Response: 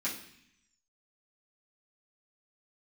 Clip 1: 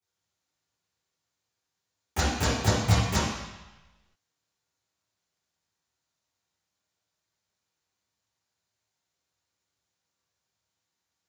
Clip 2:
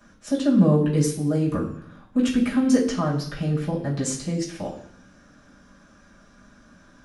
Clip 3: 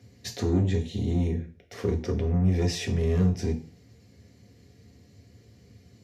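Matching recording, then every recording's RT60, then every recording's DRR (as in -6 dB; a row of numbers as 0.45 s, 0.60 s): 2; 1.1 s, 0.65 s, 0.40 s; -10.0 dB, -9.0 dB, 1.5 dB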